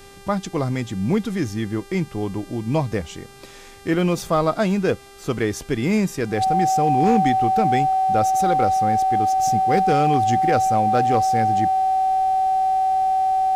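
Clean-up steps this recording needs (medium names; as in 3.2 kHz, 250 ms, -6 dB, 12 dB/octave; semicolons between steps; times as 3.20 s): clip repair -9.5 dBFS; de-hum 396.8 Hz, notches 31; band-stop 760 Hz, Q 30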